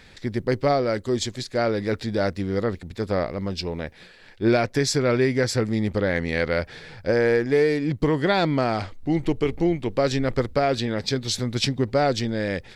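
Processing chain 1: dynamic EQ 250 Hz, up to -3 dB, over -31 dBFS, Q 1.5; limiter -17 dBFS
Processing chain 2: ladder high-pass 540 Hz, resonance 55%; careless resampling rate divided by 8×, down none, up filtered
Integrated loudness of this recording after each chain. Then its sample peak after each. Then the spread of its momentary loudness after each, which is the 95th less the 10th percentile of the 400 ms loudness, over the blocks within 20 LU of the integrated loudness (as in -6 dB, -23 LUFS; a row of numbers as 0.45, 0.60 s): -27.5, -32.0 LUFS; -17.0, -15.0 dBFS; 5, 13 LU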